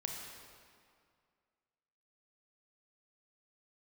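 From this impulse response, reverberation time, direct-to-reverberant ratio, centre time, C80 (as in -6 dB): 2.2 s, 0.5 dB, 82 ms, 3.5 dB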